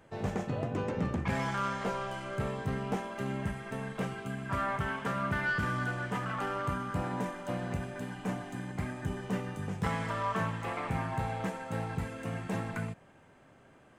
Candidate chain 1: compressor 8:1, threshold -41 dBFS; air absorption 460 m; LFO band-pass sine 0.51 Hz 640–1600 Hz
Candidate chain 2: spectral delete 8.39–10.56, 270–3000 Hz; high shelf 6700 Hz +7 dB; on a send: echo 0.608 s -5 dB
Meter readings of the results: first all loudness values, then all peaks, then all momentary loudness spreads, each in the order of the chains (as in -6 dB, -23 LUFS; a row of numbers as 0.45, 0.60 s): -55.0, -34.0 LUFS; -39.0, -17.0 dBFS; 8, 7 LU